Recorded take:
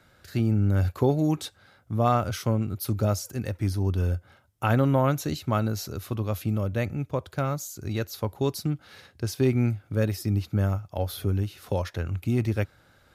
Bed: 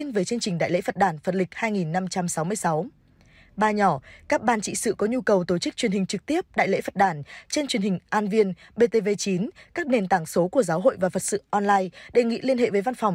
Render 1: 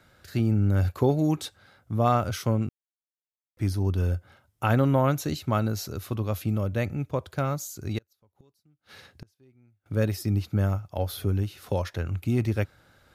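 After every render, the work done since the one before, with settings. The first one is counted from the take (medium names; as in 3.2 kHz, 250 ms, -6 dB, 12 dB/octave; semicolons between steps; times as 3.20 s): 2.69–3.57 s: mute; 7.98–9.86 s: inverted gate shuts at -29 dBFS, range -36 dB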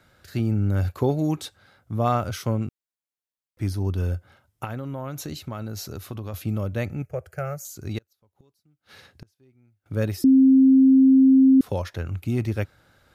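4.64–6.34 s: compression 12:1, threshold -28 dBFS; 7.02–7.65 s: static phaser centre 1 kHz, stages 6; 10.24–11.61 s: bleep 265 Hz -11 dBFS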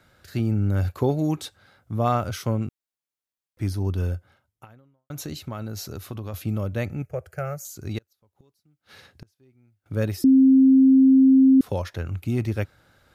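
4.05–5.10 s: fade out quadratic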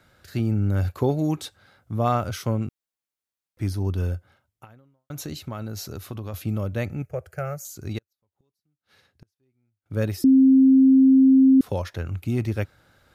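7.93–9.97 s: upward expansion, over -50 dBFS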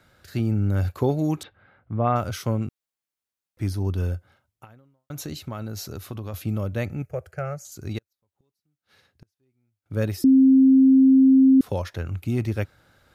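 1.43–2.16 s: low-pass 2.6 kHz 24 dB/octave; 7.31–7.72 s: distance through air 50 m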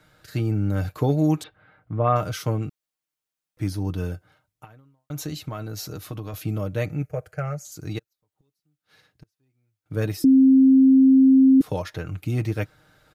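comb 6.5 ms, depth 57%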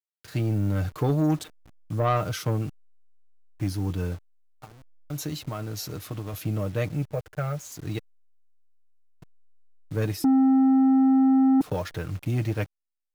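send-on-delta sampling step -44 dBFS; saturation -16.5 dBFS, distortion -12 dB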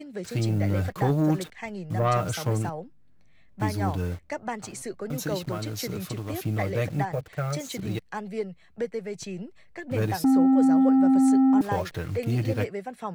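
add bed -11 dB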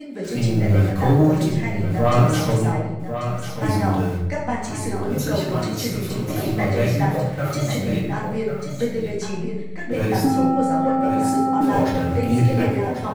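delay 1092 ms -8.5 dB; simulated room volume 270 m³, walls mixed, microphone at 2 m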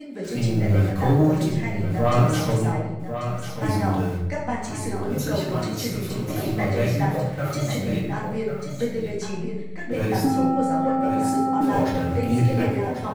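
trim -2.5 dB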